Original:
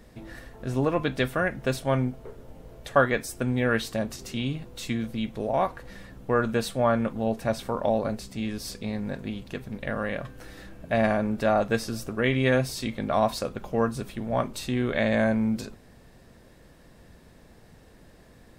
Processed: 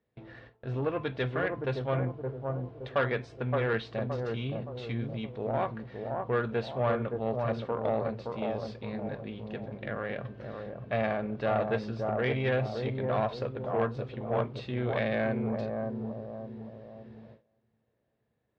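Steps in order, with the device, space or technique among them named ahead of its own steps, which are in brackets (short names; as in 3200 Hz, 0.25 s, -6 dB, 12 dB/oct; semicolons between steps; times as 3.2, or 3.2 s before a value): analogue delay pedal into a guitar amplifier (analogue delay 0.569 s, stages 4096, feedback 44%, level -4.5 dB; tube stage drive 17 dB, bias 0.5; speaker cabinet 96–3800 Hz, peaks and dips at 120 Hz +7 dB, 180 Hz -4 dB, 260 Hz -4 dB, 440 Hz +4 dB); gate with hold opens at -37 dBFS; gain -3.5 dB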